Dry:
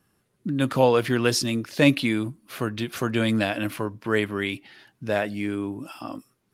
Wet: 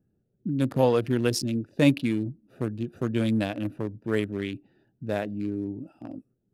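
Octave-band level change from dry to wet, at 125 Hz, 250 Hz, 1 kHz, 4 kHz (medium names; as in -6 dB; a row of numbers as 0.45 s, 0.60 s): -0.5 dB, -1.5 dB, -6.5 dB, -7.5 dB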